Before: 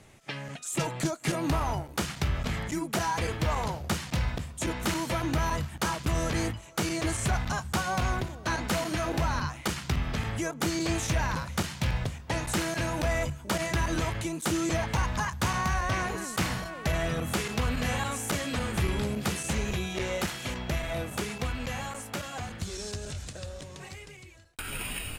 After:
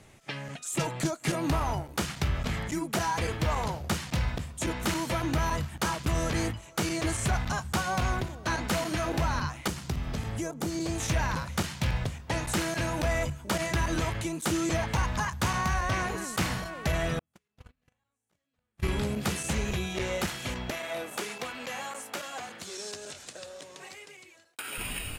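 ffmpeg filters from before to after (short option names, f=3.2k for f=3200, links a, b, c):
-filter_complex "[0:a]asettb=1/sr,asplit=3[a][b][c];[a]atrim=end=9.684[d];[b]atrim=start=9.68:end=11,asetpts=PTS-STARTPTS,afade=t=in:d=0.004:c=qsin,afade=t=out:st=1.316:d=0.004:c=qsin,acrossover=split=910|4400[e][f][g];[e]acompressor=threshold=-28dB:ratio=4[h];[f]acompressor=threshold=-47dB:ratio=4[i];[g]acompressor=threshold=-41dB:ratio=4[j];[h][i][j]amix=inputs=3:normalize=0[k];[c]atrim=start=10.996[l];[d][k]acrossfade=d=0.004:c1=hsin:c2=qsin[m];[m][l]acrossfade=d=0.004:c1=qsin:c2=hsin,asettb=1/sr,asplit=3[n][o][p];[n]atrim=end=17.194[q];[o]atrim=start=17.19:end=18.83,asetpts=PTS-STARTPTS,afade=t=in:d=0.004:c=qsin,afade=t=out:st=1.636:d=0.004:c=qsin,agate=range=-52dB:threshold=-23dB:ratio=16:release=100:detection=peak[r];[p]atrim=start=18.826[s];[q][r]acrossfade=d=0.004:c1=hsin:c2=qsin[t];[t][s]acrossfade=d=0.004:c1=qsin:c2=hsin,asettb=1/sr,asplit=3[u][v][w];[u]atrim=end=20.704[x];[v]atrim=start=20.7:end=24.78,asetpts=PTS-STARTPTS,afade=t=in:d=0.004:c=qsin,afade=t=out:st=4.076:d=0.004:c=qsin,highpass=340[y];[w]atrim=start=24.776[z];[x][y]acrossfade=d=0.004:c1=hsin:c2=qsin[aa];[aa][z]acrossfade=d=0.004:c1=qsin:c2=hsin"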